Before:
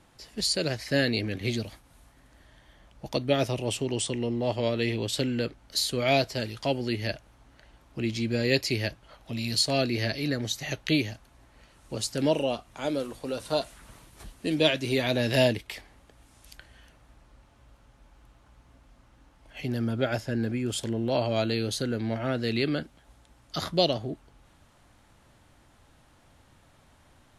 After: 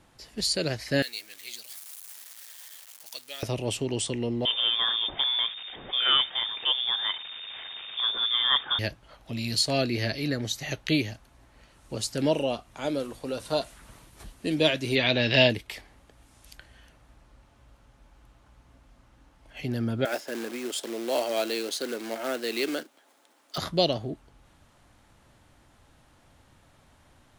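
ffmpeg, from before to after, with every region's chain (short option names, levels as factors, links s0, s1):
-filter_complex "[0:a]asettb=1/sr,asplit=3[s0][s1][s2];[s0]atrim=end=1.024[s3];[s1]atrim=start=1.02:end=3.43,asetpts=PTS-STARTPTS,afade=t=in:d=0.004:c=qsin,afade=t=out:st=2.406:d=0.004:c=qsin,aeval=exprs='val(0)+0.5*0.0188*sgn(val(0))':c=same,highpass=f=290:p=1,aderivative[s4];[s2]atrim=start=3.426[s5];[s3][s4]acrossfade=d=0.004:c1=hsin:c2=qsin[s6];[s6][s5]acrossfade=d=0.004:c1=qsin:c2=hsin,asettb=1/sr,asplit=3[s7][s8][s9];[s7]atrim=end=4.454[s10];[s8]atrim=start=4.45:end=8.79,asetpts=PTS-STARTPTS,afade=t=in:d=0.004:c=qsin,afade=t=out:st=4.336:d=0.004:c=qsin,aeval=exprs='val(0)+0.5*0.0178*sgn(val(0))':c=same,lowpass=f=3100:t=q:w=0.5098,lowpass=f=3100:t=q:w=0.6013,lowpass=f=3100:t=q:w=0.9,lowpass=f=3100:t=q:w=2.563,afreqshift=-3700[s11];[s9]atrim=start=8.786[s12];[s10][s11]acrossfade=d=0.004:c1=hsin:c2=qsin[s13];[s13][s12]acrossfade=d=0.004:c1=qsin:c2=hsin,asettb=1/sr,asplit=3[s14][s15][s16];[s14]atrim=end=14.954[s17];[s15]atrim=start=14.95:end=15.5,asetpts=PTS-STARTPTS,afade=t=in:d=0.004:c=qsin,afade=t=out:st=0.546:d=0.004:c=qsin,lowpass=f=5200:w=0.5412,lowpass=f=5200:w=1.3066,equalizer=f=2900:t=o:w=1.4:g=8.5[s18];[s16]atrim=start=15.496[s19];[s17][s18]acrossfade=d=0.004:c1=hsin:c2=qsin[s20];[s20][s19]acrossfade=d=0.004:c1=qsin:c2=hsin,asettb=1/sr,asplit=3[s21][s22][s23];[s21]atrim=end=20.054[s24];[s22]atrim=start=20.05:end=23.58,asetpts=PTS-STARTPTS,afade=t=in:d=0.004:c=qsin,afade=t=out:st=3.526:d=0.004:c=qsin,acrusher=bits=3:mode=log:mix=0:aa=0.000001,highpass=f=300:w=0.5412,highpass=f=300:w=1.3066[s25];[s23]atrim=start=23.576[s26];[s24][s25]acrossfade=d=0.004:c1=hsin:c2=qsin[s27];[s27][s26]acrossfade=d=0.004:c1=qsin:c2=hsin"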